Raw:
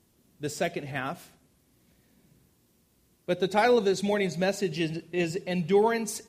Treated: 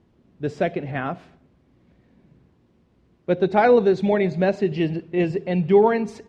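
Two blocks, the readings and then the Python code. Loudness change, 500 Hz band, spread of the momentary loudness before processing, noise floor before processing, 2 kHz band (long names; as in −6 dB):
+6.5 dB, +7.0 dB, 14 LU, −67 dBFS, +2.5 dB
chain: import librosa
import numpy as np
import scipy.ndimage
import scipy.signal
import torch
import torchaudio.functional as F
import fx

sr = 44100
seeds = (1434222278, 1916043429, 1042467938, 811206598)

y = scipy.signal.sosfilt(scipy.signal.butter(2, 3400.0, 'lowpass', fs=sr, output='sos'), x)
y = fx.high_shelf(y, sr, hz=2000.0, db=-10.0)
y = y * 10.0 ** (7.5 / 20.0)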